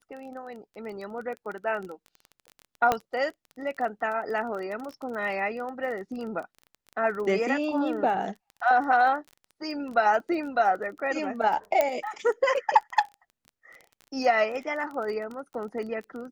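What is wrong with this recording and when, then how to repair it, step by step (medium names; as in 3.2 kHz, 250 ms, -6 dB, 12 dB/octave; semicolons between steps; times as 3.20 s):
crackle 21 per s -35 dBFS
2.92 s: pop -10 dBFS
11.81 s: pop -10 dBFS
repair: de-click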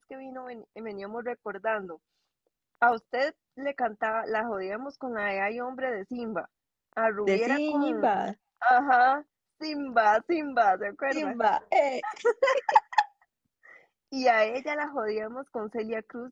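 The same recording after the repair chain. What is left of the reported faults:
2.92 s: pop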